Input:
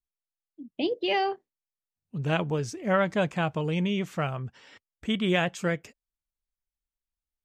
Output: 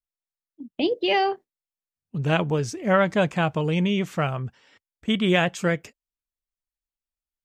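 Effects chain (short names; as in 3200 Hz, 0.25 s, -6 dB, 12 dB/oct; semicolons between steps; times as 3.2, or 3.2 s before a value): gate -43 dBFS, range -9 dB; gain +4.5 dB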